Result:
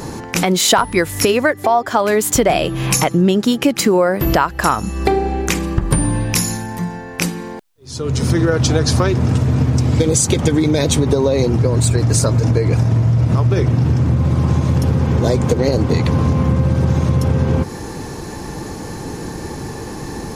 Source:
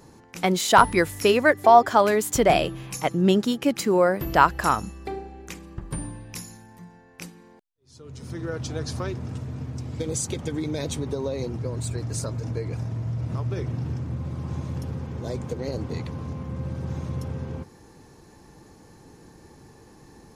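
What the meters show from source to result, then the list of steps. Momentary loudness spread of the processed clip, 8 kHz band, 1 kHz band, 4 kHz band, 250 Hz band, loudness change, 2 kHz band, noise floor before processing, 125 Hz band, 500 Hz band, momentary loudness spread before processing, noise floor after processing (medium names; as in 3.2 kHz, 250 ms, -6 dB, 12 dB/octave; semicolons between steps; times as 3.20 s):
14 LU, +13.5 dB, +2.5 dB, +10.5 dB, +11.0 dB, +8.5 dB, +5.5 dB, -52 dBFS, +15.0 dB, +7.0 dB, 19 LU, -30 dBFS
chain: compression 12:1, threshold -33 dBFS, peak gain reduction 24.5 dB; loudness maximiser +23.5 dB; trim -1 dB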